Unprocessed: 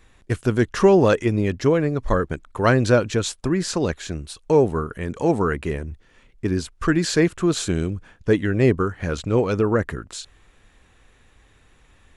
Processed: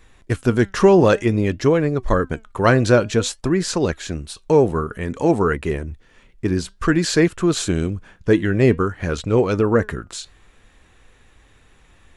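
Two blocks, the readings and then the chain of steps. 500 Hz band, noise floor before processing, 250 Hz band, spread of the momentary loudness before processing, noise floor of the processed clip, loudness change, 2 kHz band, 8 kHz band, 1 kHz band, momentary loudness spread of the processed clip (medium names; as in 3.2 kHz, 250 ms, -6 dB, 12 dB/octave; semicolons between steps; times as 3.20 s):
+2.5 dB, -56 dBFS, +2.5 dB, 12 LU, -54 dBFS, +2.5 dB, +2.5 dB, +2.5 dB, +2.5 dB, 12 LU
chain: flange 0.54 Hz, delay 1.9 ms, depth 4.3 ms, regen +86%; trim +7 dB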